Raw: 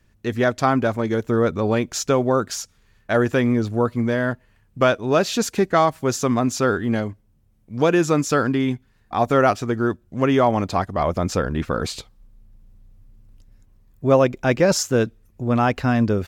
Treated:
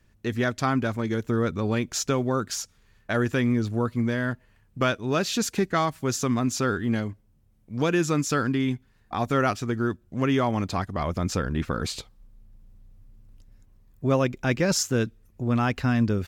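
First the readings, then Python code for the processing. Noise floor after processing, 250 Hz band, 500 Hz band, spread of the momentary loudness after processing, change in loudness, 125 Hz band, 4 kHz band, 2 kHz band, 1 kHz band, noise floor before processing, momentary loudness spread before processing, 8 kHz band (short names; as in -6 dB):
-62 dBFS, -4.0 dB, -8.0 dB, 8 LU, -5.5 dB, -2.5 dB, -2.5 dB, -4.0 dB, -7.0 dB, -60 dBFS, 9 LU, -2.0 dB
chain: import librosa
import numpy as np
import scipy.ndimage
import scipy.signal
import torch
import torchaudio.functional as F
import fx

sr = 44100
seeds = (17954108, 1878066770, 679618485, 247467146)

y = fx.dynamic_eq(x, sr, hz=640.0, q=0.82, threshold_db=-31.0, ratio=4.0, max_db=-8)
y = y * 10.0 ** (-2.0 / 20.0)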